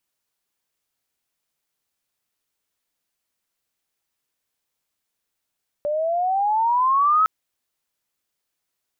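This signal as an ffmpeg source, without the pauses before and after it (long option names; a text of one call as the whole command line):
ffmpeg -f lavfi -i "aevalsrc='pow(10,(-13.5+7*(t/1.41-1))/20)*sin(2*PI*581*1.41/(14*log(2)/12)*(exp(14*log(2)/12*t/1.41)-1))':duration=1.41:sample_rate=44100" out.wav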